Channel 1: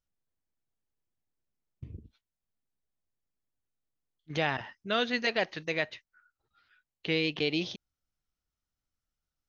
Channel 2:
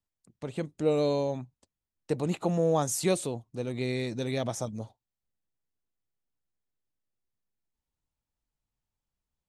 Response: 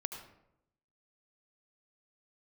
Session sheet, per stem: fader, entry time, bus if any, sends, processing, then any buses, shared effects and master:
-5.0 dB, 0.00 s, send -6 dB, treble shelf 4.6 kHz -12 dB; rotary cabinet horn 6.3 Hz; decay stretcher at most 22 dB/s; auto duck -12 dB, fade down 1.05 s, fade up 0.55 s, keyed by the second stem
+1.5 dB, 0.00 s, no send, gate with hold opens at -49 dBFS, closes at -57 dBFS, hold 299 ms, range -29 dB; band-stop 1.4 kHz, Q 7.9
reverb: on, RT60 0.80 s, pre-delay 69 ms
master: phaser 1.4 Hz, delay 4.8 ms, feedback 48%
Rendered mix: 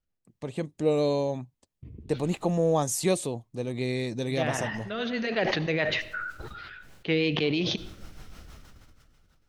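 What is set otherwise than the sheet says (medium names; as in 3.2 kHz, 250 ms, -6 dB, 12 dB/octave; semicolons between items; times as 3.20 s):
stem 1 -5.0 dB -> +2.0 dB; master: missing phaser 1.4 Hz, delay 4.8 ms, feedback 48%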